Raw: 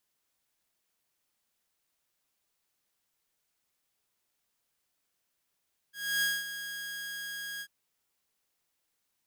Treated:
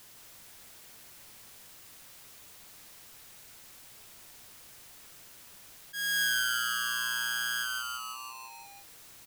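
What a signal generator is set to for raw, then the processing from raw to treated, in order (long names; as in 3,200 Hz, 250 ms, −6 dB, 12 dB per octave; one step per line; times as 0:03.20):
note with an ADSR envelope saw 1,640 Hz, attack 291 ms, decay 214 ms, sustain −11.5 dB, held 1.68 s, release 62 ms −23 dBFS
parametric band 110 Hz +6 dB 0.79 octaves
on a send: echo with shifted repeats 167 ms, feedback 53%, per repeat −120 Hz, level −3 dB
on the sum: envelope flattener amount 50%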